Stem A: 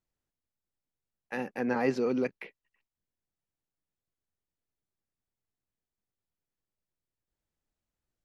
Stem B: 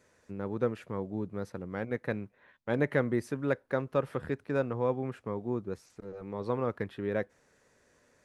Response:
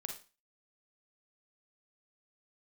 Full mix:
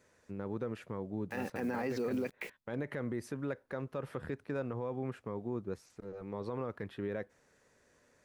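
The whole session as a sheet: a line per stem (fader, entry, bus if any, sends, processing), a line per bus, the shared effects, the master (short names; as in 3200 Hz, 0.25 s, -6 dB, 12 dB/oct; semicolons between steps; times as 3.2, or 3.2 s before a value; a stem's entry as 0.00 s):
+2.0 dB, 0.00 s, no send, bit-crush 9-bit
-2.0 dB, 0.00 s, no send, dry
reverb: off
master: limiter -27.5 dBFS, peak gain reduction 13.5 dB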